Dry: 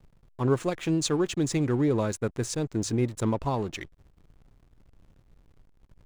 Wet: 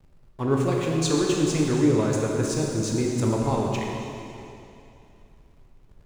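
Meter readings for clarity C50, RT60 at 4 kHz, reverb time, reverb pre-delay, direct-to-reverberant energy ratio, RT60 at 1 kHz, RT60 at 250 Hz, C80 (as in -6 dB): -0.5 dB, 2.6 s, 2.8 s, 7 ms, -2.0 dB, 2.7 s, 2.7 s, 1.0 dB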